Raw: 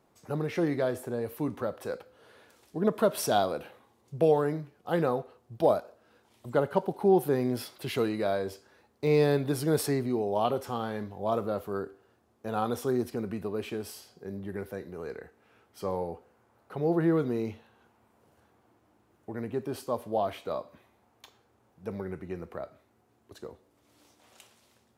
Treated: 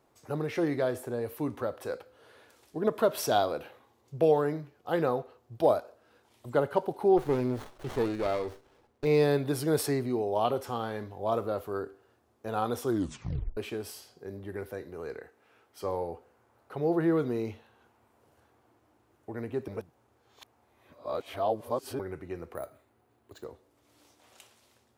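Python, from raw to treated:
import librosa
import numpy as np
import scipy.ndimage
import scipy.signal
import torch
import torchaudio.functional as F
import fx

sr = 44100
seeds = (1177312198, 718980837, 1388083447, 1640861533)

y = fx.peak_eq(x, sr, hz=9300.0, db=-6.5, octaves=0.26, at=(2.98, 5.55))
y = fx.running_max(y, sr, window=17, at=(7.16, 9.04), fade=0.02)
y = fx.low_shelf(y, sr, hz=140.0, db=-9.0, at=(15.19, 15.84))
y = fx.resample_bad(y, sr, factor=4, down='filtered', up='hold', at=(22.55, 23.44))
y = fx.edit(y, sr, fx.tape_stop(start_s=12.86, length_s=0.71),
    fx.reverse_span(start_s=19.68, length_s=2.31), tone=tone)
y = fx.peak_eq(y, sr, hz=190.0, db=-9.5, octaves=0.35)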